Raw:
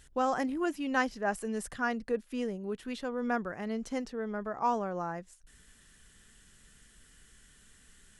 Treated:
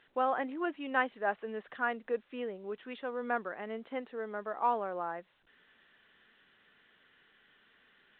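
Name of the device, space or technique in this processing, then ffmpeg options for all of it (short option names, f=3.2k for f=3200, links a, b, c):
telephone: -af "highpass=380,lowpass=3.2k" -ar 8000 -c:a pcm_alaw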